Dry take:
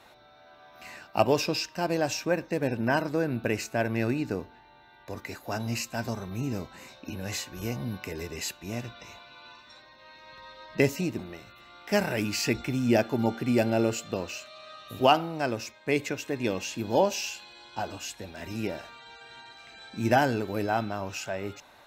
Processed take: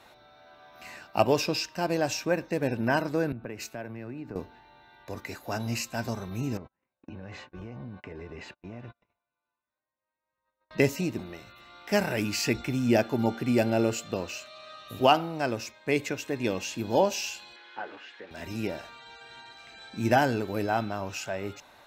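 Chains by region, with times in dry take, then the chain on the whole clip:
3.32–4.36 s: peaking EQ 8.1 kHz -8.5 dB 1.8 oct + compression 5:1, threshold -34 dBFS + three bands expanded up and down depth 100%
6.57–10.71 s: gate -43 dBFS, range -36 dB + low-pass 1.9 kHz + compression 5:1, threshold -37 dBFS
17.56–18.31 s: zero-crossing glitches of -30 dBFS + cabinet simulation 420–2700 Hz, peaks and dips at 430 Hz +3 dB, 660 Hz -9 dB, 1 kHz -5 dB, 1.7 kHz +4 dB, 2.6 kHz -6 dB
whole clip: none

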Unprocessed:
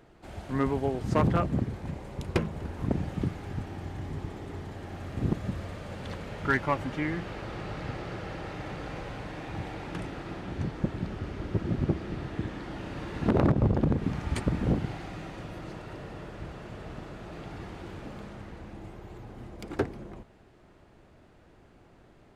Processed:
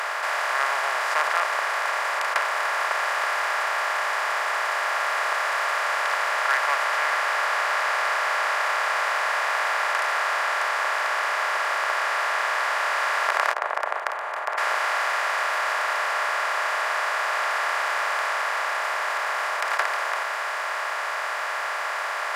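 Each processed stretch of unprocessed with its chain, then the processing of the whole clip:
13.53–14.58 s: self-modulated delay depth 0.45 ms + elliptic band-pass 130–780 Hz, stop band 70 dB + gate -32 dBFS, range -13 dB
whole clip: spectral levelling over time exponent 0.2; inverse Chebyshev high-pass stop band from 260 Hz, stop band 50 dB; tilt EQ +2 dB/octave

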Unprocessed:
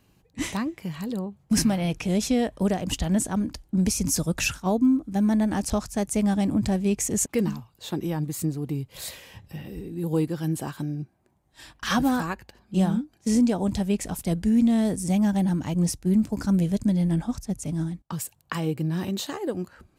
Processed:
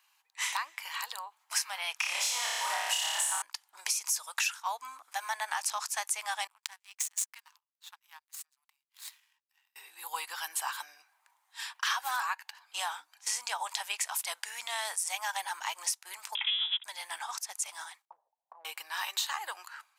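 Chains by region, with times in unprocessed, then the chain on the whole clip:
1.96–3.42 s: flutter echo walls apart 4.9 m, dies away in 1.3 s + waveshaping leveller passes 1
6.47–9.76 s: high-pass 790 Hz 24 dB/octave + power-law waveshaper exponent 2
16.35–16.84 s: comb filter that takes the minimum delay 1.8 ms + high-pass 320 Hz + frequency inversion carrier 3.7 kHz
18.05–18.65 s: steep low-pass 640 Hz + compression 4:1, threshold -34 dBFS
whole clip: level rider gain up to 8 dB; elliptic high-pass 910 Hz, stop band 80 dB; compression 5:1, threshold -29 dBFS

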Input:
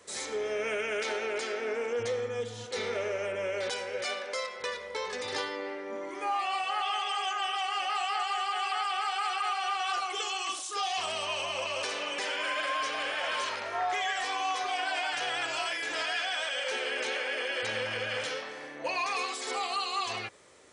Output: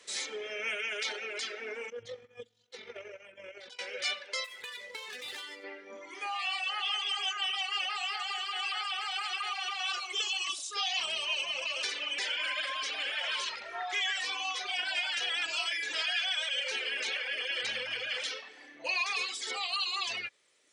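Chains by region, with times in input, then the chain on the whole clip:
1.90–3.79 s: tilt EQ -2 dB/octave + AM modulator 46 Hz, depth 30% + upward expansion 2.5:1, over -40 dBFS
4.44–5.64 s: median filter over 9 samples + treble shelf 2.4 kHz +9 dB + compression 16:1, threshold -35 dBFS
7.92–10.34 s: Chebyshev low-pass 9.1 kHz, order 5 + bit-crushed delay 107 ms, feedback 55%, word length 9-bit, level -12 dB
whole clip: reverb removal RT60 1.9 s; frequency weighting D; trim -6 dB

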